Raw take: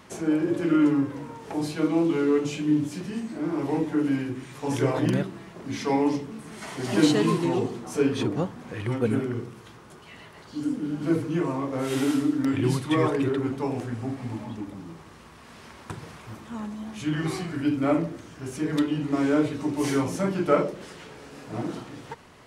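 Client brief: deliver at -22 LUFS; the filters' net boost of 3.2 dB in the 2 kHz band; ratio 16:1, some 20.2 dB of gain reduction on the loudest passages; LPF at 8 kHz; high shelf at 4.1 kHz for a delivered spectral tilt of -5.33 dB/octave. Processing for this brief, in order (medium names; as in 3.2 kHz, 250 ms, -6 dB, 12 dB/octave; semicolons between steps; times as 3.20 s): low-pass 8 kHz; peaking EQ 2 kHz +3 dB; treble shelf 4.1 kHz +5 dB; compression 16:1, threshold -34 dBFS; trim +17 dB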